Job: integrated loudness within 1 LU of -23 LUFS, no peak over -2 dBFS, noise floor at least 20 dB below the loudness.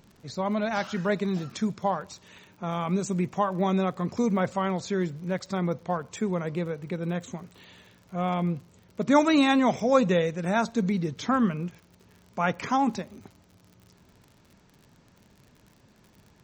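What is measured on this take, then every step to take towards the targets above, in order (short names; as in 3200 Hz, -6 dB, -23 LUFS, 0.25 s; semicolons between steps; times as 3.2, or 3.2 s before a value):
ticks 57/s; loudness -27.0 LUFS; peak -8.5 dBFS; loudness target -23.0 LUFS
-> de-click; gain +4 dB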